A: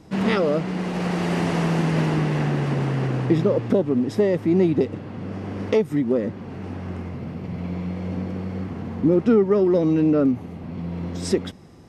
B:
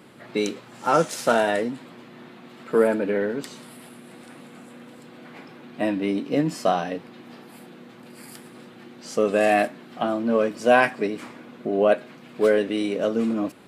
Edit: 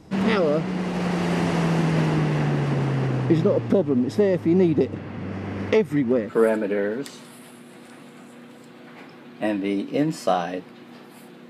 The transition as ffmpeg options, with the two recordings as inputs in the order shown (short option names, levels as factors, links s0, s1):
-filter_complex "[0:a]asettb=1/sr,asplit=3[s0][s1][s2];[s0]atrim=end=4.964[s3];[s1]atrim=start=4.96:end=6.33,asetpts=PTS-STARTPTS,afade=t=in:d=0.004:c=qsin,afade=t=out:st=1.366:d=0.004:c=qsin,equalizer=f=2000:t=o:w=1.2:g=5.5[s4];[s2]atrim=start=6.326[s5];[s3][s4]acrossfade=d=0.004:c1=hsin:c2=qsin[s6];[s6][s5]acrossfade=d=0.004:c1=qsin:c2=hsin,apad=whole_dur=11.49,atrim=end=11.49,atrim=end=6.33,asetpts=PTS-STARTPTS[s7];[1:a]atrim=start=2.57:end=7.87,asetpts=PTS-STARTPTS[s8];[s7][s8]acrossfade=d=0.14:c1=tri:c2=tri"